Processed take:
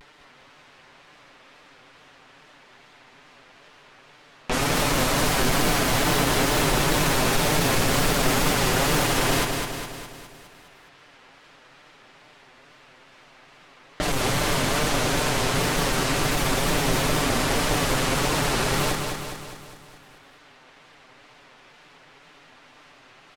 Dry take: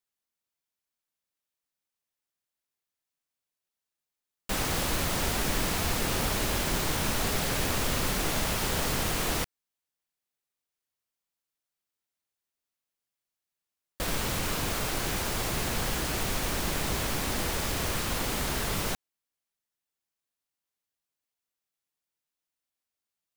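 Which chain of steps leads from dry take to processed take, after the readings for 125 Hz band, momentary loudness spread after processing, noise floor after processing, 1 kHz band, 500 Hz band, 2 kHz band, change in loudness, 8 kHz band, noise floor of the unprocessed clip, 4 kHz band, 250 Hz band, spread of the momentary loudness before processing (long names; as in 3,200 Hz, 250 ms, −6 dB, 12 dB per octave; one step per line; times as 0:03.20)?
+7.0 dB, 8 LU, −53 dBFS, +9.0 dB, +9.5 dB, +8.0 dB, +6.5 dB, +5.5 dB, below −85 dBFS, +7.0 dB, +8.5 dB, 3 LU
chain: each half-wave held at its own peak
low-pass that shuts in the quiet parts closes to 2,600 Hz, open at −20 dBFS
low-shelf EQ 140 Hz −6 dB
comb filter 7.2 ms, depth 91%
upward compression, threshold −23 dBFS
tape wow and flutter 140 cents
on a send: repeating echo 205 ms, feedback 56%, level −5 dB
on the sum: every ending faded ahead of time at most 110 dB per second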